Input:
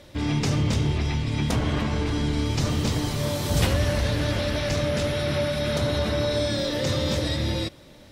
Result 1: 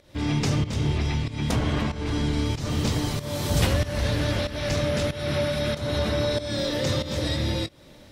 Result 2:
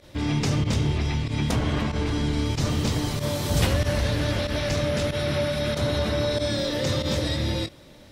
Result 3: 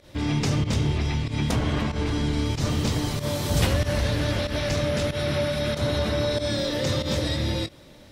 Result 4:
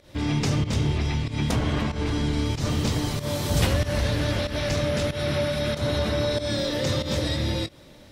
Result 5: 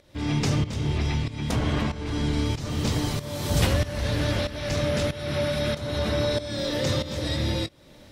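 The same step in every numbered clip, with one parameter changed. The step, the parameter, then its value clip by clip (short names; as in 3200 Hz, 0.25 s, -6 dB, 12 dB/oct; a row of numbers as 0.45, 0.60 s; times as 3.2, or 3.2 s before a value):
pump, release: 305, 61, 104, 155, 489 ms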